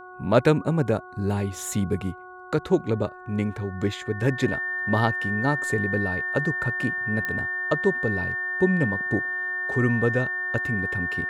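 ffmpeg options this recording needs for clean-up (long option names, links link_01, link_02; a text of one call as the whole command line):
ffmpeg -i in.wav -af "adeclick=threshold=4,bandreject=frequency=366.3:width_type=h:width=4,bandreject=frequency=732.6:width_type=h:width=4,bandreject=frequency=1098.9:width_type=h:width=4,bandreject=frequency=1465.2:width_type=h:width=4,bandreject=frequency=1800:width=30" out.wav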